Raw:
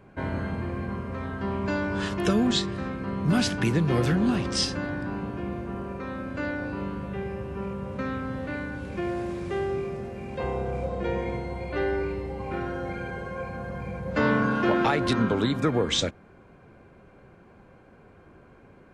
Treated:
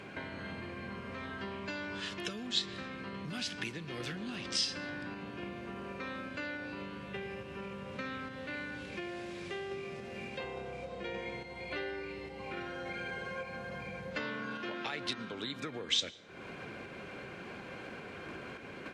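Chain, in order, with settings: level rider gain up to 13 dB; random-step tremolo; compression 5:1, threshold -50 dBFS, peak gain reduction 34.5 dB; frequency weighting D; reverberation RT60 1.3 s, pre-delay 103 ms, DRR 19.5 dB; trim +7 dB

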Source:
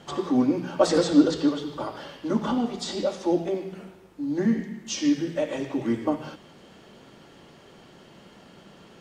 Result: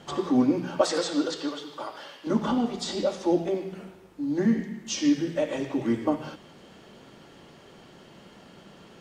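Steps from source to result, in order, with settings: 0.81–2.27 s: high-pass 810 Hz 6 dB/octave

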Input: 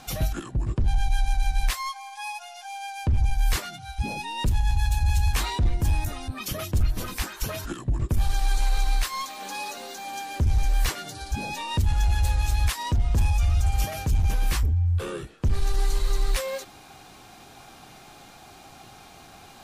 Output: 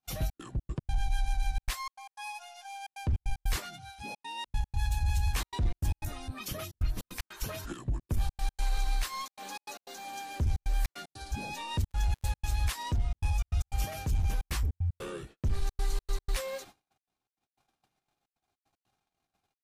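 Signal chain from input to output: 3.88–4.45 s: high-pass 540 Hz -> 250 Hz 6 dB/octave; gate -43 dBFS, range -41 dB; trance gate "xxx.xx.x.xxxx" 152 bpm -60 dB; 11.90–12.32 s: crackle 110 per s -45 dBFS; trim -6.5 dB

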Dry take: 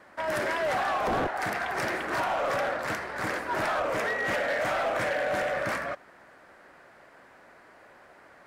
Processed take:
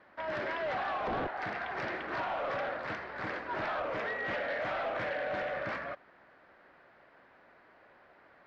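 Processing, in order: low-pass 4.3 kHz 24 dB/octave; trim -6.5 dB

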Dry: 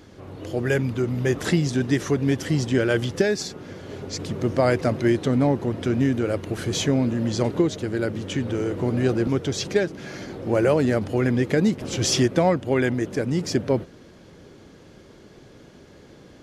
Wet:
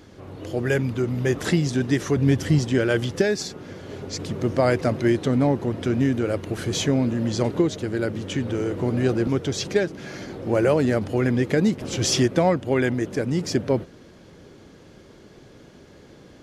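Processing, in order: 2.16–2.59 s: peaking EQ 73 Hz +8.5 dB 2.3 oct

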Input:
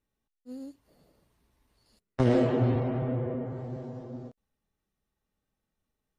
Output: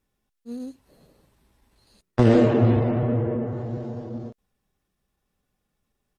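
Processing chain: pitch shift -1 st; trim +7 dB

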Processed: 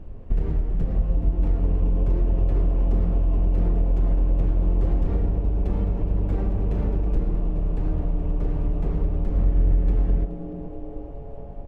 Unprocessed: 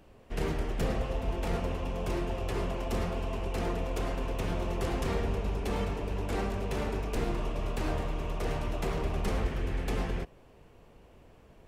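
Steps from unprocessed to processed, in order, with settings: tilt EQ -4.5 dB/octave; compression 10:1, threshold -20 dBFS, peak gain reduction 15 dB; 9.31–9.75 s: doubling 44 ms -4.5 dB; frequency-shifting echo 424 ms, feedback 61%, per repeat +130 Hz, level -17 dB; reverberation RT60 0.50 s, pre-delay 90 ms, DRR 14 dB; trim +2 dB

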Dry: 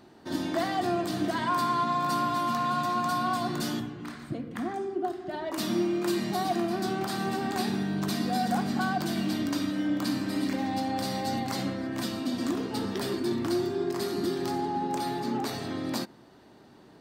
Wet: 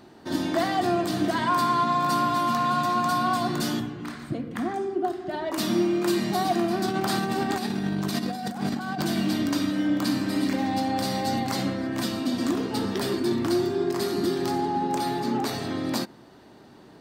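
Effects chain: 6.86–9.02 s: compressor with a negative ratio -31 dBFS, ratio -0.5; trim +4 dB

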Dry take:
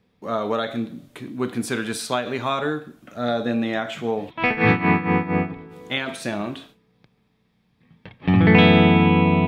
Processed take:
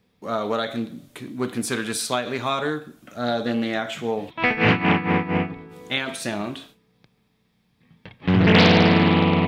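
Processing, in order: treble shelf 4.3 kHz +7.5 dB; loudspeaker Doppler distortion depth 0.56 ms; trim -1 dB

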